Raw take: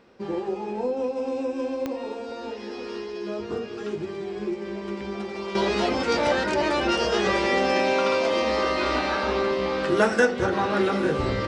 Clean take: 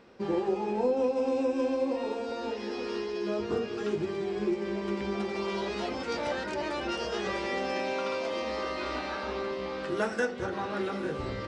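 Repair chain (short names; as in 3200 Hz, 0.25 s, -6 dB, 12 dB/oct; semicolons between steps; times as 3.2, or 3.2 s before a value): de-click; gain correction -9.5 dB, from 5.55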